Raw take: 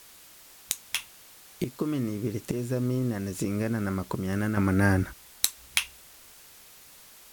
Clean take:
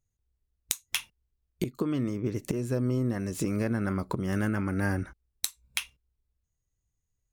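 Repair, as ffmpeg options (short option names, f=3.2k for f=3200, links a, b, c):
-af "afwtdn=0.0028,asetnsamples=n=441:p=0,asendcmd='4.57 volume volume -6dB',volume=0dB"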